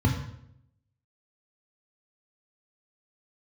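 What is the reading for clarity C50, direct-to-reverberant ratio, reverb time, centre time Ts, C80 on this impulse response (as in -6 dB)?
5.5 dB, 1.0 dB, 0.75 s, 34 ms, 8.0 dB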